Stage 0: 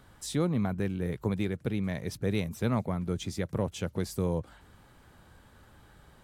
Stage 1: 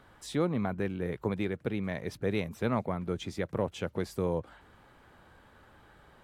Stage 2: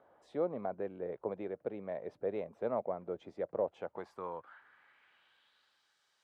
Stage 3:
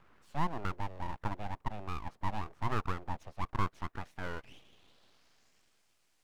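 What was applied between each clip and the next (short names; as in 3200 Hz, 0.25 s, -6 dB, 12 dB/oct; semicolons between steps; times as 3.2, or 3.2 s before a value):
tone controls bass -7 dB, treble -10 dB; gain +2 dB
band-pass sweep 600 Hz -> 5600 Hz, 3.63–5.92; gain +1.5 dB
full-wave rectifier; gain +4 dB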